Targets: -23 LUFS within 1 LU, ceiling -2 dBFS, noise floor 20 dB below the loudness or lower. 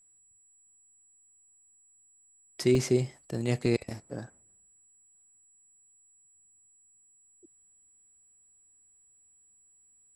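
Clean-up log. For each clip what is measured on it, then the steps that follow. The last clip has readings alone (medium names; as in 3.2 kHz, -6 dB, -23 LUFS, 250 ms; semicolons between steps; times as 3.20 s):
dropouts 2; longest dropout 1.9 ms; steady tone 7.8 kHz; tone level -60 dBFS; loudness -29.5 LUFS; peak level -13.5 dBFS; loudness target -23.0 LUFS
-> interpolate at 2.75/3.66 s, 1.9 ms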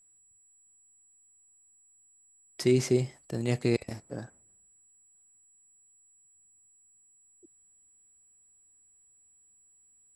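dropouts 0; steady tone 7.8 kHz; tone level -60 dBFS
-> band-stop 7.8 kHz, Q 30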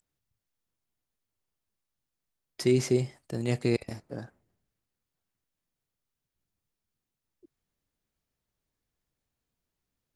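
steady tone not found; loudness -28.5 LUFS; peak level -13.5 dBFS; loudness target -23.0 LUFS
-> trim +5.5 dB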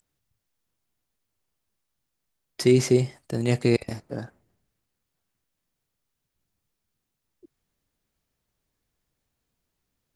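loudness -23.5 LUFS; peak level -8.0 dBFS; noise floor -82 dBFS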